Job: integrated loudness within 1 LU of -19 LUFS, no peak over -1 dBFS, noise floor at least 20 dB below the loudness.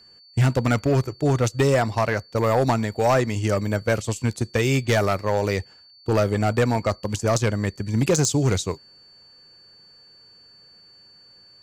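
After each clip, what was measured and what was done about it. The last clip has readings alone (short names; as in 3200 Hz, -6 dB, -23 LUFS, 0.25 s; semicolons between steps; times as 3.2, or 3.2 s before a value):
clipped 1.3%; flat tops at -13.0 dBFS; steady tone 4500 Hz; tone level -49 dBFS; loudness -22.5 LUFS; peak -13.0 dBFS; loudness target -19.0 LUFS
-> clip repair -13 dBFS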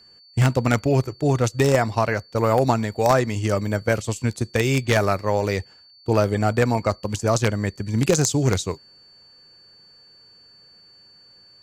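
clipped 0.0%; steady tone 4500 Hz; tone level -49 dBFS
-> notch 4500 Hz, Q 30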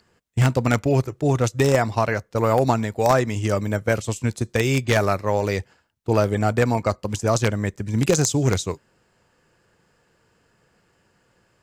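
steady tone none; loudness -21.5 LUFS; peak -4.0 dBFS; loudness target -19.0 LUFS
-> gain +2.5 dB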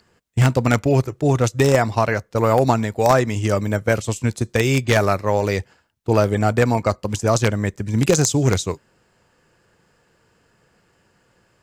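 loudness -19.0 LUFS; peak -1.5 dBFS; noise floor -62 dBFS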